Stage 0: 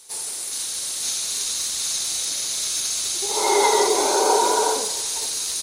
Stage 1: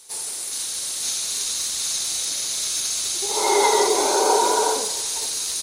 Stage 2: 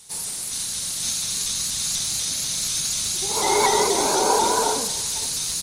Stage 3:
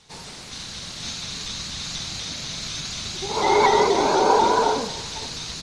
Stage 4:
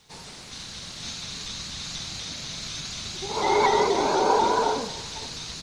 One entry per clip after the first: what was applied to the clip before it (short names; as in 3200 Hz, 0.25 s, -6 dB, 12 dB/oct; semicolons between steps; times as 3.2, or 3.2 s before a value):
nothing audible
resonant low shelf 260 Hz +11 dB, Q 1.5; shaped vibrato saw up 4.1 Hz, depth 100 cents
air absorption 190 m; gain +3.5 dB
requantised 12-bit, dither triangular; gain -3.5 dB